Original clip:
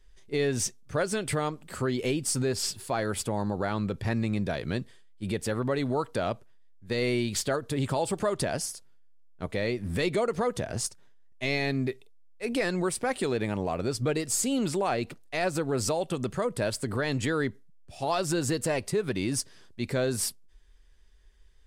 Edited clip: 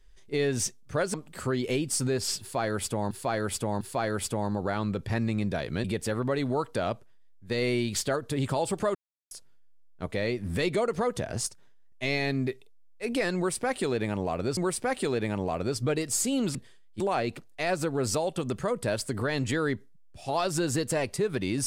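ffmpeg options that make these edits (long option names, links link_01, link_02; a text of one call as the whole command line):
ffmpeg -i in.wav -filter_complex "[0:a]asplit=10[link_01][link_02][link_03][link_04][link_05][link_06][link_07][link_08][link_09][link_10];[link_01]atrim=end=1.142[link_11];[link_02]atrim=start=1.488:end=3.462[link_12];[link_03]atrim=start=2.758:end=3.462[link_13];[link_04]atrim=start=2.758:end=4.792[link_14];[link_05]atrim=start=5.238:end=8.35,asetpts=PTS-STARTPTS,afade=type=out:start_time=3.108:duration=0.004:curve=hsin[link_15];[link_06]atrim=start=8.35:end=8.71,asetpts=PTS-STARTPTS,volume=0[link_16];[link_07]atrim=start=8.71:end=13.972,asetpts=PTS-STARTPTS,afade=type=in:duration=0.004:curve=hsin[link_17];[link_08]atrim=start=12.758:end=14.742[link_18];[link_09]atrim=start=4.788:end=5.242[link_19];[link_10]atrim=start=14.738[link_20];[link_11][link_12]acrossfade=duration=0.004:curve1=hsin:curve2=hsin[link_21];[link_21][link_13]acrossfade=duration=0.004:curve1=hsin:curve2=hsin[link_22];[link_22][link_14]acrossfade=duration=0.004:curve1=hsin:curve2=hsin[link_23];[link_15][link_16][link_17]concat=n=3:v=0:a=1[link_24];[link_23][link_24]acrossfade=duration=0.004:curve1=hsin:curve2=hsin[link_25];[link_25][link_18]acrossfade=duration=0.004:curve1=hsin:curve2=hsin[link_26];[link_26][link_19]acrossfade=duration=0.004:curve1=hsin:curve2=hsin[link_27];[link_27][link_20]acrossfade=duration=0.004:curve1=hsin:curve2=hsin" out.wav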